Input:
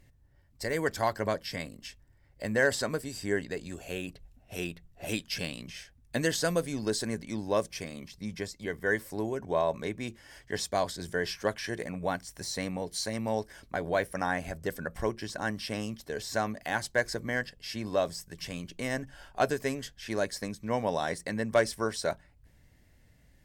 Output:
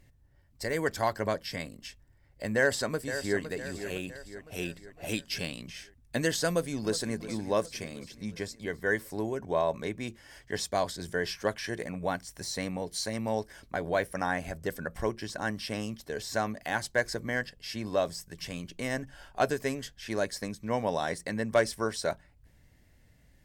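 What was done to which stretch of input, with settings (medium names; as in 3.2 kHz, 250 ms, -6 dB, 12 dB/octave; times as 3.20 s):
2.56–3.39 s: echo throw 510 ms, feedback 50%, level -10 dB
6.48–7.18 s: echo throw 360 ms, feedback 60%, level -14 dB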